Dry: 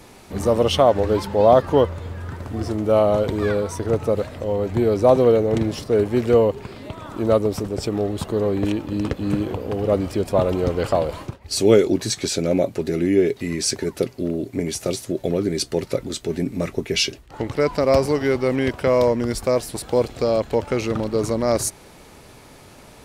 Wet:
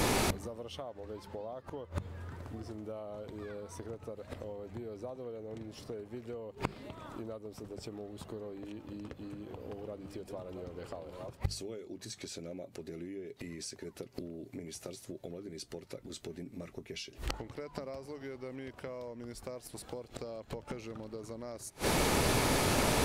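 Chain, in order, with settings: 9.14–11.39 reverse delay 0.558 s, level -9 dB; compressor 16:1, threshold -29 dBFS, peak gain reduction 21 dB; flipped gate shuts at -32 dBFS, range -27 dB; notches 50/100/150/200 Hz; gain +16.5 dB

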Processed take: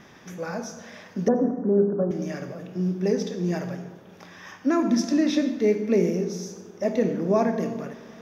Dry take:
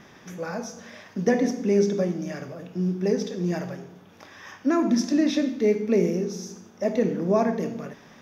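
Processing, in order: 1.28–2.11 steep low-pass 1500 Hz 72 dB/oct; on a send: reverb RT60 2.1 s, pre-delay 77 ms, DRR 14 dB

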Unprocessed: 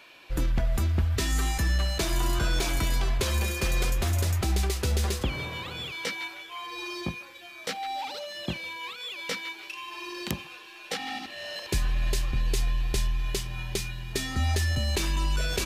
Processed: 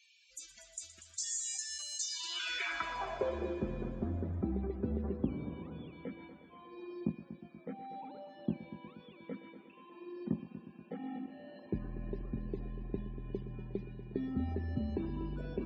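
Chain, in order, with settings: band-pass sweep 7000 Hz -> 240 Hz, 2–3.65; loudest bins only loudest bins 64; multi-head echo 0.12 s, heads first and second, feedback 61%, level -15.5 dB; gain +3 dB

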